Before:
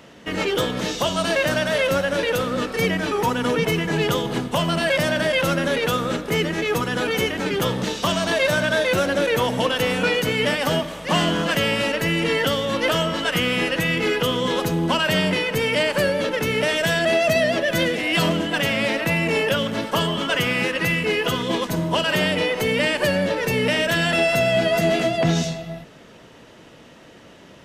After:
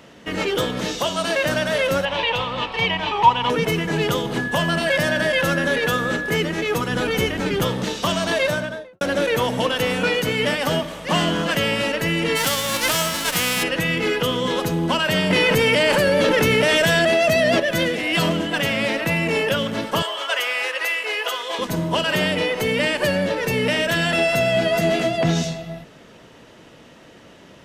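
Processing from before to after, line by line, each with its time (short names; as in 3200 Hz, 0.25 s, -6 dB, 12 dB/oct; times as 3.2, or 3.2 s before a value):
0.99–1.44 low shelf 170 Hz -8 dB
2.05–3.5 EQ curve 120 Hz 0 dB, 250 Hz -10 dB, 580 Hz -4 dB, 960 Hz +12 dB, 1400 Hz -6 dB, 3000 Hz +9 dB, 5500 Hz -7 dB, 11000 Hz -19 dB
4.37–6.35 whine 1700 Hz -25 dBFS
6.89–7.65 low shelf 120 Hz +9.5 dB
8.37–9.01 studio fade out
12.35–13.62 spectral whitening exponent 0.3
15.3–17.6 fast leveller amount 100%
20.02–21.59 HPF 540 Hz 24 dB/oct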